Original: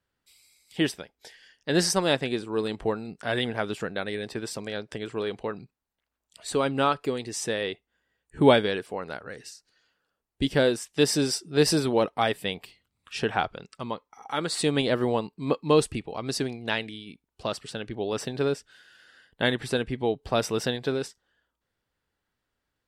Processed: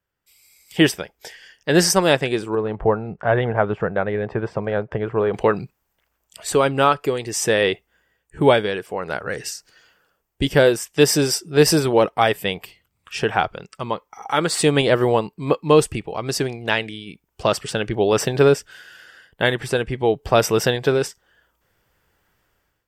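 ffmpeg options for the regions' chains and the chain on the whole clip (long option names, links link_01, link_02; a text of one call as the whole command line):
ffmpeg -i in.wav -filter_complex "[0:a]asettb=1/sr,asplit=3[link_01][link_02][link_03];[link_01]atrim=end=2.554[link_04];[link_02]atrim=start=2.55:end=5.34,asetpts=PTS-STARTPTS,afade=type=in:duration=0.004:curve=qsin,afade=type=out:start_time=2.786:duration=0.004:curve=qsin,lowpass=1100,equalizer=frequency=300:width=1.1:gain=-7[link_05];[link_03]atrim=start=5.336[link_06];[link_04][link_05]acrossfade=duration=0.004:curve1=hsin:curve2=qsin[link_07];[link_07][link_06]acrossfade=duration=0.004:curve1=qsin:curve2=hsin,equalizer=frequency=11000:width=4:gain=-13.5,dynaudnorm=framelen=200:gausssize=5:maxgain=16dB,equalizer=frequency=250:width_type=o:width=0.33:gain=-8,equalizer=frequency=4000:width_type=o:width=0.33:gain=-8,equalizer=frequency=12500:width_type=o:width=0.33:gain=12" out.wav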